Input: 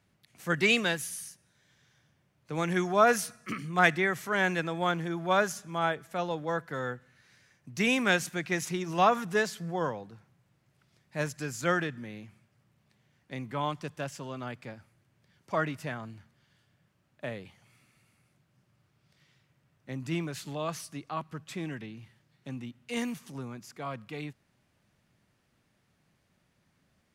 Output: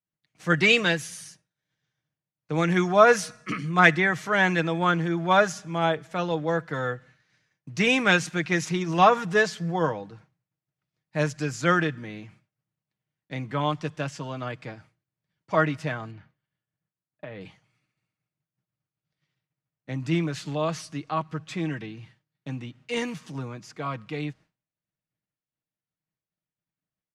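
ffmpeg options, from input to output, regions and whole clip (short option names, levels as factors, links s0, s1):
-filter_complex "[0:a]asettb=1/sr,asplit=3[s0][s1][s2];[s0]atrim=end=16.114[s3];[s1]atrim=start=16.11:end=17.41,asetpts=PTS-STARTPTS,afade=t=in:d=0.004:c=qsin,afade=t=out:st=1.296:d=0.004:c=qsin,lowpass=3200,acompressor=threshold=0.0112:ratio=12:attack=3.2:release=140:knee=1:detection=peak[s4];[s2]atrim=start=17.406[s5];[s3][s4]acrossfade=d=0.004:c1=hsin:c2=qsin[s6];[s6][s5]acrossfade=d=0.004:c1=qsin:c2=hsin,lowpass=6500,agate=range=0.0224:threshold=0.00224:ratio=3:detection=peak,aecho=1:1:6.4:0.44,volume=1.78"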